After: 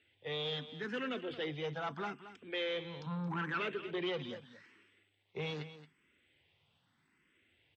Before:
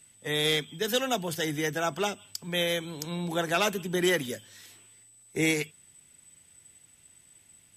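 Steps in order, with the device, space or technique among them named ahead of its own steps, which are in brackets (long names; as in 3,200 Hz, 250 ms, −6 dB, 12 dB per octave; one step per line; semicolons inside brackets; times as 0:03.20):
0:03.06–0:03.60: octave-band graphic EQ 125/500/1,000/4,000/8,000 Hz +11/−11/+10/−9/+4 dB
barber-pole phaser into a guitar amplifier (frequency shifter mixed with the dry sound +0.8 Hz; soft clipping −29 dBFS, distortion −11 dB; loudspeaker in its box 97–3,400 Hz, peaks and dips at 120 Hz −5 dB, 190 Hz −4 dB, 660 Hz −5 dB)
single-tap delay 224 ms −13.5 dB
level −2 dB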